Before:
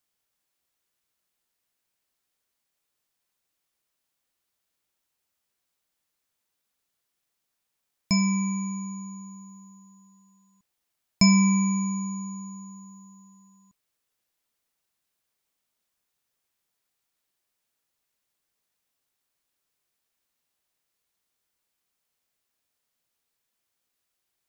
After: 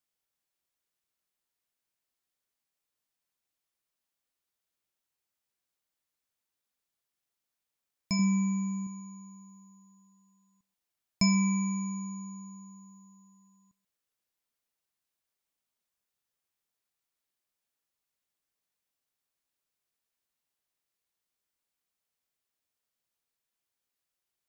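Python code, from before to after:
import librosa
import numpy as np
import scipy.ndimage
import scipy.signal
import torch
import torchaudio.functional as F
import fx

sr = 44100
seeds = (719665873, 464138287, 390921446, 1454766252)

p1 = fx.peak_eq(x, sr, hz=250.0, db=6.0, octaves=2.2, at=(8.19, 8.87))
p2 = p1 + fx.echo_single(p1, sr, ms=135, db=-20.5, dry=0)
y = p2 * 10.0 ** (-7.0 / 20.0)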